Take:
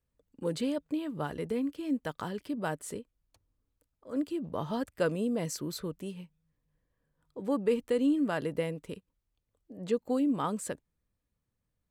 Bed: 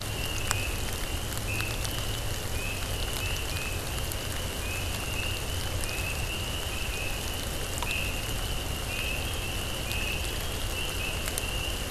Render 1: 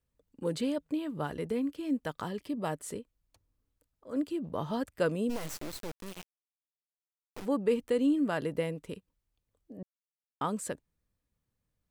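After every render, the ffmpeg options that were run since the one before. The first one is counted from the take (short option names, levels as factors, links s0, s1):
-filter_complex "[0:a]asettb=1/sr,asplit=3[s0][s1][s2];[s0]atrim=end=2.264[s3];[s1]atrim=start=2.26:end=2.73,asetpts=PTS-STARTPTS,afade=t=in:d=0.004:c=qsin,afade=t=out:st=0.466:d=0.004:c=qsin,asuperstop=centerf=1500:order=4:qfactor=7.6[s4];[s2]atrim=start=2.726[s5];[s3][s4]acrossfade=d=0.004:c1=hsin:c2=qsin[s6];[s6][s5]acrossfade=d=0.004:c1=qsin:c2=hsin,asplit=3[s7][s8][s9];[s7]afade=t=out:st=5.29:d=0.02[s10];[s8]acrusher=bits=4:dc=4:mix=0:aa=0.000001,afade=t=in:st=5.29:d=0.02,afade=t=out:st=7.44:d=0.02[s11];[s9]afade=t=in:st=7.44:d=0.02[s12];[s10][s11][s12]amix=inputs=3:normalize=0,asplit=3[s13][s14][s15];[s13]atrim=end=9.83,asetpts=PTS-STARTPTS,afade=t=out:st=9.826:d=0.004:c=hsin[s16];[s14]atrim=start=9.83:end=10.41,asetpts=PTS-STARTPTS,volume=0[s17];[s15]atrim=start=10.41,asetpts=PTS-STARTPTS,afade=t=in:d=0.004:c=hsin[s18];[s16][s17][s18]concat=n=3:v=0:a=1"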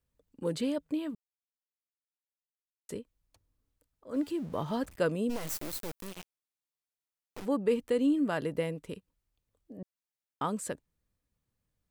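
-filter_complex "[0:a]asettb=1/sr,asplit=3[s0][s1][s2];[s0]atrim=end=4.144[s3];[s1]atrim=start=4.14:end=4.96,asetpts=PTS-STARTPTS,afade=t=in:d=0.004:c=qsin,afade=t=out:st=0.816:d=0.004:c=qsin,aeval=exprs='val(0)+0.5*0.00355*sgn(val(0))':c=same[s4];[s2]atrim=start=4.956[s5];[s3][s4]acrossfade=d=0.004:c1=hsin:c2=qsin[s6];[s6][s5]acrossfade=d=0.004:c1=qsin:c2=hsin,asettb=1/sr,asplit=3[s7][s8][s9];[s7]atrim=end=5.474[s10];[s8]atrim=start=5.47:end=6.07,asetpts=PTS-STARTPTS,afade=t=in:d=0.004:c=qsin,afade=t=out:st=0.596:d=0.004:c=qsin,highshelf=f=9700:g=12[s11];[s9]atrim=start=6.066[s12];[s10][s11]acrossfade=d=0.004:c1=hsin:c2=qsin[s13];[s13][s12]acrossfade=d=0.004:c1=qsin:c2=hsin,asplit=3[s14][s15][s16];[s14]atrim=end=1.15,asetpts=PTS-STARTPTS,afade=t=out:st=1.146:d=0.004:c=hsin[s17];[s15]atrim=start=1.15:end=2.89,asetpts=PTS-STARTPTS,volume=0[s18];[s16]atrim=start=2.89,asetpts=PTS-STARTPTS,afade=t=in:d=0.004:c=hsin[s19];[s17][s18][s19]concat=n=3:v=0:a=1"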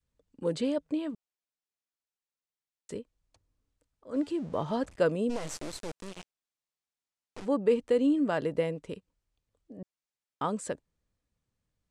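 -af "lowpass=f=8800:w=0.5412,lowpass=f=8800:w=1.3066,adynamicequalizer=threshold=0.00794:dfrequency=580:dqfactor=1:tfrequency=580:tqfactor=1:attack=5:release=100:ratio=0.375:range=2:mode=boostabove:tftype=bell"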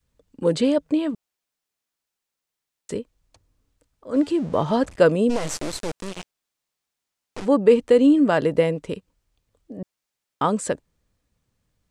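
-af "volume=3.16"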